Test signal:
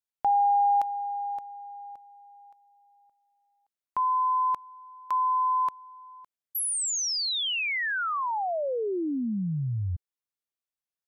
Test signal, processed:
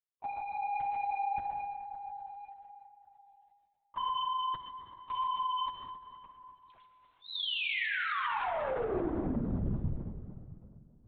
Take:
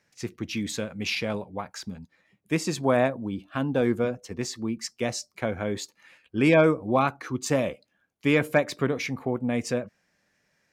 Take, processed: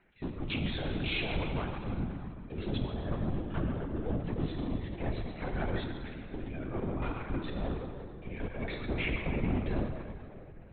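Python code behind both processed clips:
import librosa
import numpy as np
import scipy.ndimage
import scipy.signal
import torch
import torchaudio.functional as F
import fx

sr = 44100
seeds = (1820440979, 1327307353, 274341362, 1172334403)

y = fx.spec_quant(x, sr, step_db=30)
y = fx.peak_eq(y, sr, hz=120.0, db=10.0, octaves=2.7)
y = fx.level_steps(y, sr, step_db=18)
y = fx.leveller(y, sr, passes=1)
y = fx.over_compress(y, sr, threshold_db=-31.0, ratio=-1.0)
y = 10.0 ** (-30.5 / 20.0) * np.tanh(y / 10.0 ** (-30.5 / 20.0))
y = fx.echo_feedback(y, sr, ms=131, feedback_pct=48, wet_db=-10.0)
y = fx.rev_plate(y, sr, seeds[0], rt60_s=2.7, hf_ratio=0.7, predelay_ms=0, drr_db=2.5)
y = fx.lpc_vocoder(y, sr, seeds[1], excitation='whisper', order=16)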